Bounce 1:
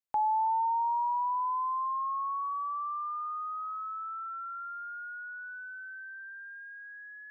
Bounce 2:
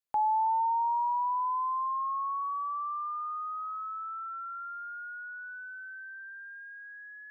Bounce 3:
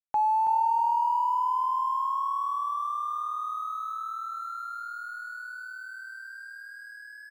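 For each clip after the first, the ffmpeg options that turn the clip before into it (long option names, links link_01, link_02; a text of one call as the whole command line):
ffmpeg -i in.wav -af "adynamicequalizer=threshold=0.00251:dfrequency=270:dqfactor=0.95:tfrequency=270:tqfactor=0.95:attack=5:release=100:ratio=0.375:range=3.5:mode=boostabove:tftype=bell" out.wav
ffmpeg -i in.wav -filter_complex "[0:a]aeval=exprs='sgn(val(0))*max(abs(val(0))-0.00133,0)':channel_layout=same,asplit=2[link_01][link_02];[link_02]aecho=0:1:327|654|981|1308|1635|1962:0.398|0.207|0.108|0.056|0.0291|0.0151[link_03];[link_01][link_03]amix=inputs=2:normalize=0,volume=3dB" out.wav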